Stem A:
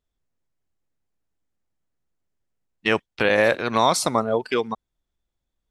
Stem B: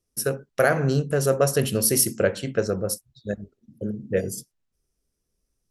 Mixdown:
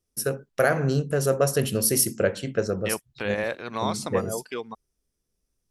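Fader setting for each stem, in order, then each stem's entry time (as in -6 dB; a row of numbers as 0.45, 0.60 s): -10.0, -1.5 dB; 0.00, 0.00 s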